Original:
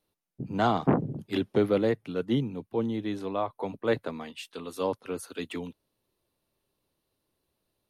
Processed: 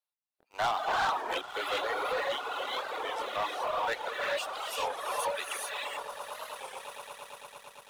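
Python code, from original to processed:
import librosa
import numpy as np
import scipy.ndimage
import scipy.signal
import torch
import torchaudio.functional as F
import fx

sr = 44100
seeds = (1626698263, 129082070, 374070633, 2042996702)

y = scipy.signal.sosfilt(scipy.signal.butter(4, 730.0, 'highpass', fs=sr, output='sos'), x)
y = fx.echo_swell(y, sr, ms=113, loudest=8, wet_db=-15.5)
y = fx.rev_gated(y, sr, seeds[0], gate_ms=460, shape='rising', drr_db=-3.5)
y = fx.dereverb_blind(y, sr, rt60_s=1.9)
y = fx.leveller(y, sr, passes=3)
y = fx.record_warp(y, sr, rpm=33.33, depth_cents=160.0)
y = F.gain(torch.from_numpy(y), -7.0).numpy()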